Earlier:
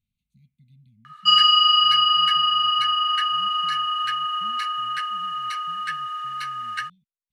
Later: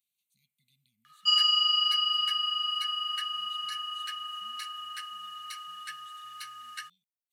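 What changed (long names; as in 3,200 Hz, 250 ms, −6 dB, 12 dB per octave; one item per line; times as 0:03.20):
speech +10.5 dB
master: add first difference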